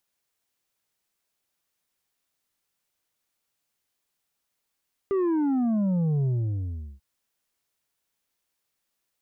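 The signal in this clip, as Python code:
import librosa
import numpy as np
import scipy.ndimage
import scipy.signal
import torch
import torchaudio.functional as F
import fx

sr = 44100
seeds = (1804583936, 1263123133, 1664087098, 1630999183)

y = fx.sub_drop(sr, level_db=-22.0, start_hz=400.0, length_s=1.89, drive_db=5.5, fade_s=0.75, end_hz=65.0)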